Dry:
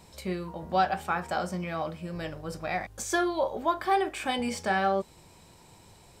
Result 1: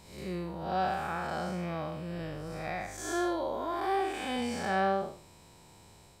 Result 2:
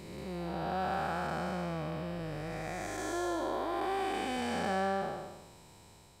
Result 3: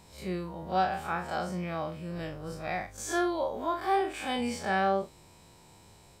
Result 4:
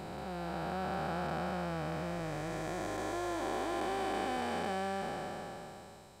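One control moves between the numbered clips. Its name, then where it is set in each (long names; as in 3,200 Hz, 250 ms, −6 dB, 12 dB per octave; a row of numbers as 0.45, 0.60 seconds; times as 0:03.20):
spectrum smeared in time, width: 209, 512, 82, 1,280 milliseconds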